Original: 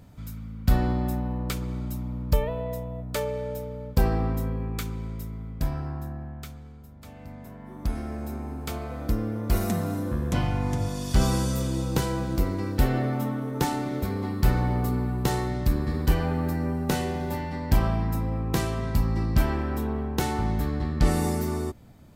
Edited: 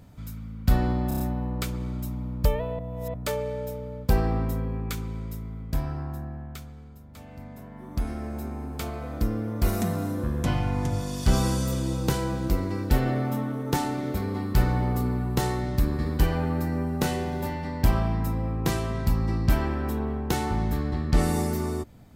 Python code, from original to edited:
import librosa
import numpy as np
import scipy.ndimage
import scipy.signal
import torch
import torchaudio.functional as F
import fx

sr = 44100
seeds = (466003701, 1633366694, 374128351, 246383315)

y = fx.edit(x, sr, fx.stutter(start_s=1.08, slice_s=0.03, count=5),
    fx.reverse_span(start_s=2.67, length_s=0.35), tone=tone)